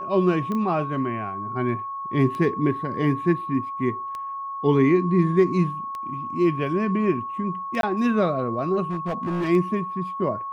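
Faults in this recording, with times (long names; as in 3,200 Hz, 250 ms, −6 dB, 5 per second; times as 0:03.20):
scratch tick 33 1/3 rpm −20 dBFS
whistle 1,100 Hz −29 dBFS
0:00.52: click −18 dBFS
0:07.81–0:07.83: drop-out 22 ms
0:08.90–0:09.49: clipping −22 dBFS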